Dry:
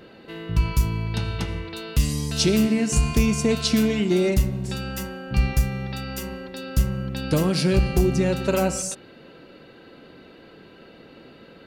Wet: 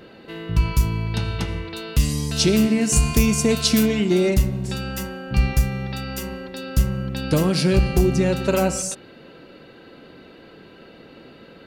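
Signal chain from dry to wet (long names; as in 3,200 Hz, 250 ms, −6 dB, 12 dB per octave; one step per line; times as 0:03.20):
0:02.81–0:03.86: high-shelf EQ 8,400 Hz +10.5 dB
level +2 dB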